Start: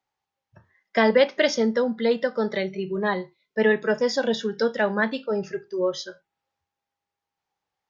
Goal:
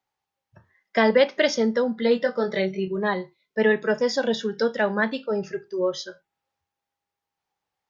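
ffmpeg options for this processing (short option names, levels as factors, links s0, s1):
-filter_complex "[0:a]asettb=1/sr,asplit=3[s0][s1][s2];[s0]atrim=end=2.004[s3];[s1]atrim=start=2:end=2.88,asetpts=PTS-STARTPTS,afade=t=in:d=0.004:c=qsin,afade=t=out:st=0.876:d=0.004:c=qsin,asplit=2[s4][s5];[s5]adelay=21,volume=0.562[s6];[s4][s6]amix=inputs=2:normalize=0,atrim=end_sample=38808[s7];[s2]atrim=start=2.876[s8];[s3][s7]acrossfade=d=0.004:c1=hsin:c2=qsin[s9];[s9][s8]acrossfade=d=0.004:c1=qsin:c2=hsin"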